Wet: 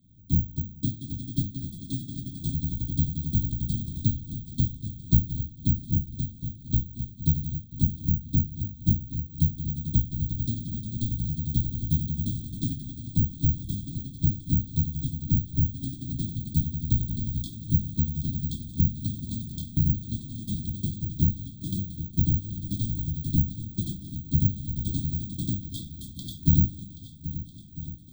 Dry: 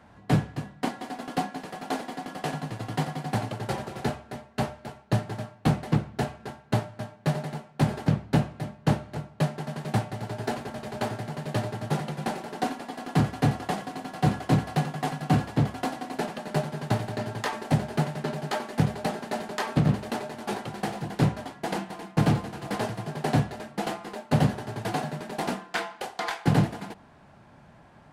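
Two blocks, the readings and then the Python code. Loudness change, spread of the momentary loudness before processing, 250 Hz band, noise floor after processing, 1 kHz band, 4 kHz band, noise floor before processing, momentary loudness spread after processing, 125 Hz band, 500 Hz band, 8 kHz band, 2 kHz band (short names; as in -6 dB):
+1.0 dB, 9 LU, -2.0 dB, -45 dBFS, under -40 dB, -7.0 dB, -54 dBFS, 10 LU, +2.0 dB, under -20 dB, -3.5 dB, under -40 dB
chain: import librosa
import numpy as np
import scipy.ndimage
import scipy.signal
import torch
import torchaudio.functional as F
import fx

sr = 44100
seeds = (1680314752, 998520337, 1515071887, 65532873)

y = fx.octave_divider(x, sr, octaves=1, level_db=0.0)
y = fx.curve_eq(y, sr, hz=(150.0, 1500.0, 2400.0, 5400.0, 7900.0), db=(0, -22, 1, -11, 1))
y = (np.kron(scipy.signal.resample_poly(y, 1, 2), np.eye(2)[0]) * 2)[:len(y)]
y = fx.brickwall_bandstop(y, sr, low_hz=340.0, high_hz=3200.0)
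y = fx.high_shelf(y, sr, hz=9000.0, db=-10.0)
y = fx.rider(y, sr, range_db=4, speed_s=0.5)
y = fx.echo_swing(y, sr, ms=1298, ratio=1.5, feedback_pct=45, wet_db=-14.0)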